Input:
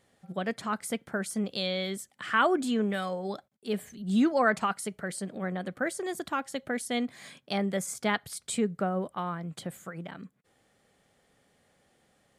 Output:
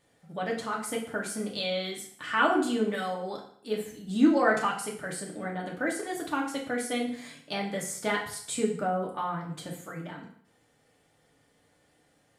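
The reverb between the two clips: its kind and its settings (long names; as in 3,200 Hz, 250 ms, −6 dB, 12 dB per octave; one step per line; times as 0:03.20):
feedback delay network reverb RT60 0.6 s, low-frequency decay 0.95×, high-frequency decay 0.9×, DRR −2 dB
level −3 dB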